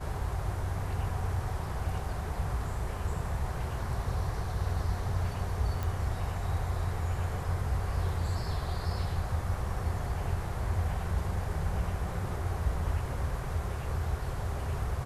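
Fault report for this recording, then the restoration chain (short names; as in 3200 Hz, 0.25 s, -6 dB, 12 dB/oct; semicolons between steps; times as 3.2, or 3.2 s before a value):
5.83 pop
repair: de-click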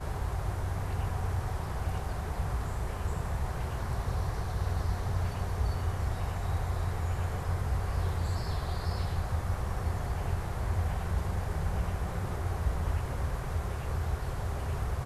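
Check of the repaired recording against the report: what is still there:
none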